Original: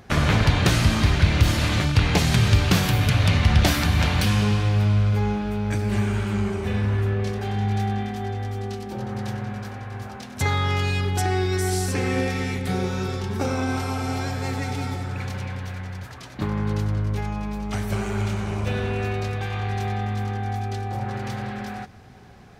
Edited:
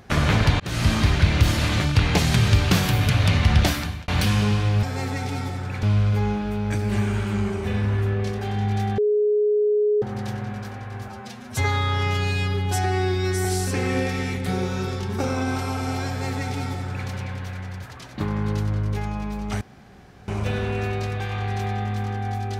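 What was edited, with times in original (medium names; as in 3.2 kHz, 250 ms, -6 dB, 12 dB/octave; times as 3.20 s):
0.60–0.89 s: fade in
3.59–4.08 s: fade out
7.98–9.02 s: bleep 419 Hz -16.5 dBFS
10.08–11.66 s: stretch 1.5×
14.29–15.29 s: copy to 4.83 s
17.82–18.49 s: room tone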